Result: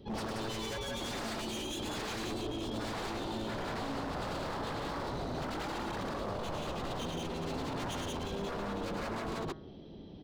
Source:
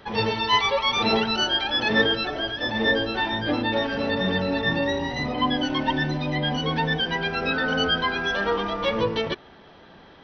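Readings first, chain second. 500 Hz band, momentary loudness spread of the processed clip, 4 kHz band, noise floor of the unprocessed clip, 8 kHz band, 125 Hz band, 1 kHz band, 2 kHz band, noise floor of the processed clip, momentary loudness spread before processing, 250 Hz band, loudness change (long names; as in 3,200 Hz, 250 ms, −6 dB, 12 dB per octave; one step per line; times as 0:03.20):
−12.5 dB, 1 LU, −17.5 dB, −49 dBFS, can't be measured, −10.5 dB, −12.5 dB, −19.0 dB, −49 dBFS, 5 LU, −11.5 dB, −14.5 dB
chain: drawn EQ curve 340 Hz 0 dB, 1,600 Hz −29 dB, 3,200 Hz −12 dB
wave folding −32 dBFS
on a send: loudspeakers that aren't time-aligned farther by 36 metres −4 dB, 61 metres −1 dB
on the sum: brickwall limiter −30 dBFS, peak gain reduction 5.5 dB
hum removal 158.5 Hz, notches 13
dynamic equaliser 3,200 Hz, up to −3 dB, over −56 dBFS, Q 1.1
level +1 dB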